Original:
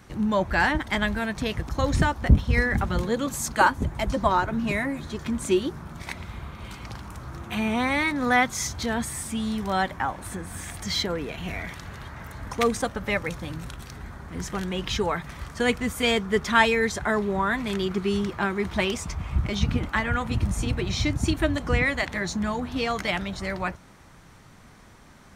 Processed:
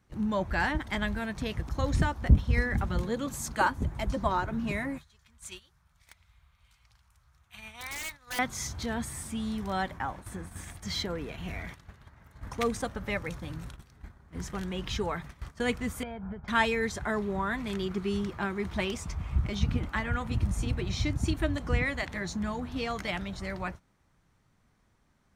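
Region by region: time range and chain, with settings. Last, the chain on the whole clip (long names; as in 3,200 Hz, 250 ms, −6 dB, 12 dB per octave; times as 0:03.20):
0:04.98–0:08.39: guitar amp tone stack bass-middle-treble 10-0-10 + wrap-around overflow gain 22 dB
0:16.03–0:16.48: Chebyshev low-pass filter 1,100 Hz + downward compressor 20 to 1, threshold −28 dBFS + comb filter 1.3 ms, depth 60%
whole clip: noise gate −36 dBFS, range −13 dB; low-shelf EQ 160 Hz +5 dB; level −7 dB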